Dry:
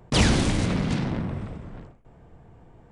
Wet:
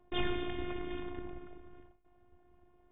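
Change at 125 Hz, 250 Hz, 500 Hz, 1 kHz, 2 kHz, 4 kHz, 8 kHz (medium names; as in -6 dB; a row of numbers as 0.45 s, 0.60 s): -23.0 dB, -15.5 dB, -9.0 dB, -11.5 dB, -13.5 dB, -14.5 dB, under -40 dB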